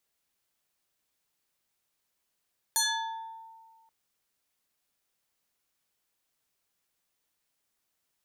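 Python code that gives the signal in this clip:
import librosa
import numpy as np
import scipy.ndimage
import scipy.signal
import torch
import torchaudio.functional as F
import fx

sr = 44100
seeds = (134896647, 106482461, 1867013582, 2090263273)

y = fx.fm2(sr, length_s=1.13, level_db=-22.0, carrier_hz=900.0, ratio=2.88, index=4.6, index_s=0.89, decay_s=1.72, shape='exponential')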